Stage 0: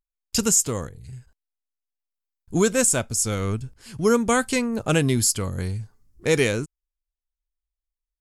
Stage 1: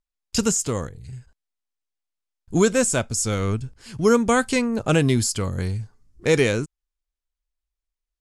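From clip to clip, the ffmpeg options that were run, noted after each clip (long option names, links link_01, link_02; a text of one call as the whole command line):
ffmpeg -i in.wav -filter_complex "[0:a]lowpass=8800,acrossover=split=1400[link_01][link_02];[link_02]alimiter=limit=-16.5dB:level=0:latency=1:release=10[link_03];[link_01][link_03]amix=inputs=2:normalize=0,volume=2dB" out.wav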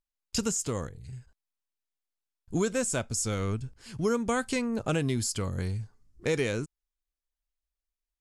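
ffmpeg -i in.wav -af "acompressor=threshold=-22dB:ratio=2,volume=-5dB" out.wav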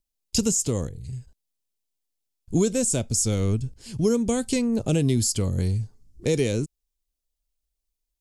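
ffmpeg -i in.wav -filter_complex "[0:a]equalizer=frequency=1400:width_type=o:width=1.7:gain=-13.5,acrossover=split=660|2200[link_01][link_02][link_03];[link_02]alimiter=level_in=15dB:limit=-24dB:level=0:latency=1:release=216,volume=-15dB[link_04];[link_01][link_04][link_03]amix=inputs=3:normalize=0,volume=8dB" out.wav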